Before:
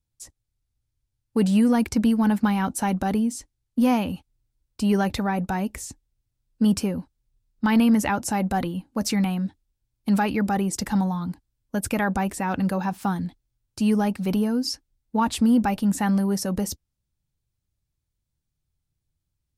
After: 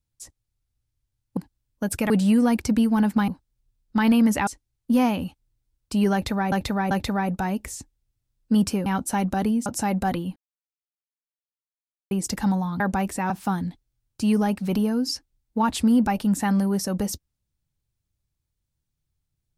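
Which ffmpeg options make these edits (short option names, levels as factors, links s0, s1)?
-filter_complex "[0:a]asplit=13[s0][s1][s2][s3][s4][s5][s6][s7][s8][s9][s10][s11][s12];[s0]atrim=end=1.372[s13];[s1]atrim=start=11.288:end=12.022[s14];[s2]atrim=start=1.368:end=2.552[s15];[s3]atrim=start=6.958:end=8.152[s16];[s4]atrim=start=3.348:end=5.402[s17];[s5]atrim=start=5.008:end=5.402[s18];[s6]atrim=start=5.008:end=6.962[s19];[s7]atrim=start=2.548:end=3.352[s20];[s8]atrim=start=8.148:end=8.85,asetpts=PTS-STARTPTS,afade=t=out:st=0.698:d=0.004:c=hsin[s21];[s9]atrim=start=8.85:end=10.6,asetpts=PTS-STARTPTS,volume=0[s22];[s10]atrim=start=10.6:end=11.292,asetpts=PTS-STARTPTS,afade=t=in:d=0.004:c=hsin[s23];[s11]atrim=start=12.018:end=12.522[s24];[s12]atrim=start=12.878[s25];[s13][s14]acrossfade=d=0.004:c1=hsin:c2=hsin[s26];[s26][s15]acrossfade=d=0.004:c1=hsin:c2=hsin[s27];[s27][s16]acrossfade=d=0.004:c1=hsin:c2=hsin[s28];[s28][s17]acrossfade=d=0.004:c1=hsin:c2=hsin[s29];[s29][s18]acrossfade=d=0.004:c1=hsin:c2=hsin[s30];[s30][s19]acrossfade=d=0.004:c1=hsin:c2=hsin[s31];[s31][s20]acrossfade=d=0.004:c1=hsin:c2=hsin[s32];[s21][s22][s23]concat=n=3:v=0:a=1[s33];[s32][s33]acrossfade=d=0.004:c1=hsin:c2=hsin[s34];[s34][s24]acrossfade=d=0.004:c1=hsin:c2=hsin[s35];[s35][s25]acrossfade=d=0.004:c1=hsin:c2=hsin"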